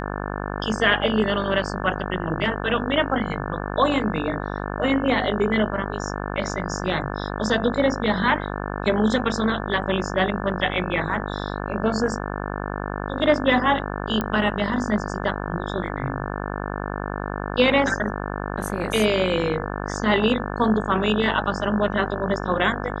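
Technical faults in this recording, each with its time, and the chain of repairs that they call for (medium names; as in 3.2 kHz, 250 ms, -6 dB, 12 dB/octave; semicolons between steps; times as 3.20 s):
buzz 50 Hz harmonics 35 -29 dBFS
14.21 s: pop -12 dBFS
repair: de-click; de-hum 50 Hz, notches 35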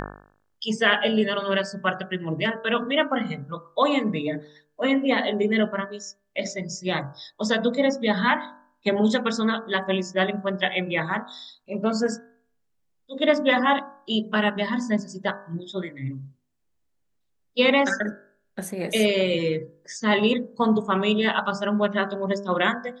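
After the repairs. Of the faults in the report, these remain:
nothing left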